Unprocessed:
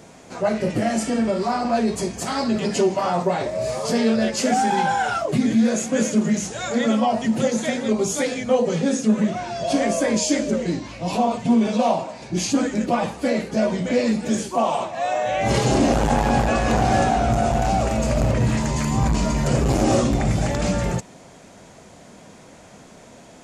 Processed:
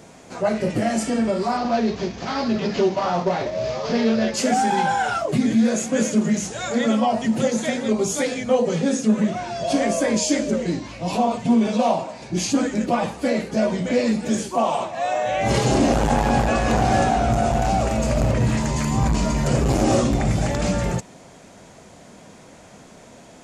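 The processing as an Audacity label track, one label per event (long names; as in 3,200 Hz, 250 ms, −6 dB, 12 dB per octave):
1.570000	4.340000	variable-slope delta modulation 32 kbit/s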